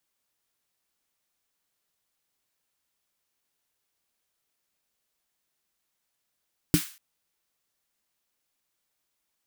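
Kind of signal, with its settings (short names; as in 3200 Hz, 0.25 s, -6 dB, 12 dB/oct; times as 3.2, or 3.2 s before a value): snare drum length 0.24 s, tones 170 Hz, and 300 Hz, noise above 1300 Hz, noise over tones -10.5 dB, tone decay 0.10 s, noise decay 0.41 s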